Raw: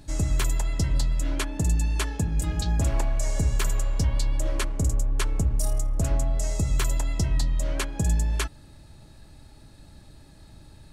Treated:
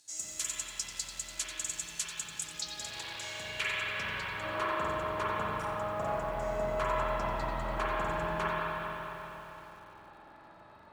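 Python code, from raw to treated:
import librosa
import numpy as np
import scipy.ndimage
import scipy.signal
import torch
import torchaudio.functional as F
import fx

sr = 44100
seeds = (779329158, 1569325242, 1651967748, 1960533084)

y = fx.hum_notches(x, sr, base_hz=50, count=2)
y = fx.quant_companded(y, sr, bits=6)
y = fx.filter_sweep_bandpass(y, sr, from_hz=6800.0, to_hz=1000.0, start_s=2.4, end_s=4.63, q=2.1)
y = fx.rev_spring(y, sr, rt60_s=3.9, pass_ms=(38, 48), chirp_ms=65, drr_db=-7.5)
y = fx.echo_crushed(y, sr, ms=90, feedback_pct=35, bits=9, wet_db=-11)
y = y * librosa.db_to_amplitude(2.5)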